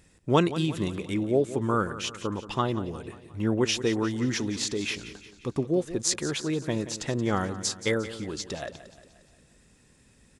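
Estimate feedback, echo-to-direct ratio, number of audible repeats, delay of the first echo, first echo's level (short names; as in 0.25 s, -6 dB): 52%, -12.5 dB, 4, 0.177 s, -14.0 dB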